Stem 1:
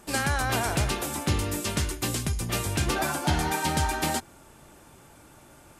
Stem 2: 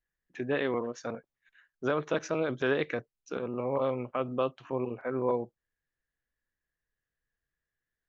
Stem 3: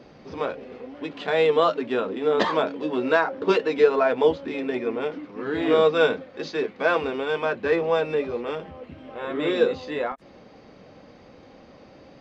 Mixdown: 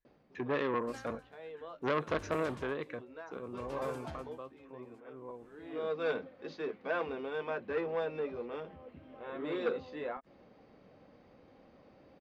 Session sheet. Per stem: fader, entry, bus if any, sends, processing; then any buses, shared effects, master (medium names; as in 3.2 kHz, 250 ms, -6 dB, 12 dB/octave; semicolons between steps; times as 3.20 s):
-15.5 dB, 0.80 s, no send, logarithmic tremolo 0.64 Hz, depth 33 dB
2.40 s -1 dB -> 2.71 s -8.5 dB -> 4.00 s -8.5 dB -> 4.38 s -18 dB, 0.00 s, no send, small resonant body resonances 1.1/4 kHz, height 11 dB
-11.0 dB, 0.05 s, no send, auto duck -16 dB, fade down 0.45 s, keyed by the second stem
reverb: none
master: low-pass 2.7 kHz 6 dB/octave; transformer saturation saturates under 1.2 kHz